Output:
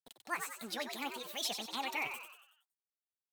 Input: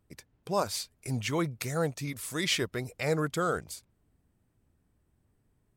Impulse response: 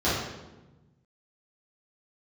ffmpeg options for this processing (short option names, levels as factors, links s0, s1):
-filter_complex "[0:a]flanger=delay=7.1:depth=7.3:regen=38:speed=0.36:shape=sinusoidal,asplit=2[s0][s1];[s1]acompressor=threshold=0.00631:ratio=6,volume=0.708[s2];[s0][s2]amix=inputs=2:normalize=0,equalizer=f=1600:w=0.74:g=7.5,aeval=exprs='val(0)*gte(abs(val(0)),0.00562)':c=same,lowshelf=f=340:g=-4,asplit=7[s3][s4][s5][s6][s7][s8][s9];[s4]adelay=162,afreqshift=59,volume=0.447[s10];[s5]adelay=324,afreqshift=118,volume=0.214[s11];[s6]adelay=486,afreqshift=177,volume=0.102[s12];[s7]adelay=648,afreqshift=236,volume=0.0495[s13];[s8]adelay=810,afreqshift=295,volume=0.0237[s14];[s9]adelay=972,afreqshift=354,volume=0.0114[s15];[s3][s10][s11][s12][s13][s14][s15]amix=inputs=7:normalize=0,asetrate=76440,aresample=44100,volume=0.376"